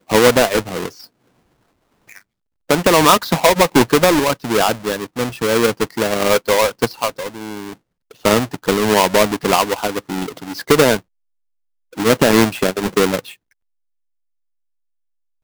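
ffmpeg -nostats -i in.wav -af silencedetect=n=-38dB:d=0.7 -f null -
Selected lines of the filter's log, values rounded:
silence_start: 1.05
silence_end: 2.09 | silence_duration: 1.04
silence_start: 11.00
silence_end: 11.93 | silence_duration: 0.93
silence_start: 13.34
silence_end: 15.43 | silence_duration: 2.09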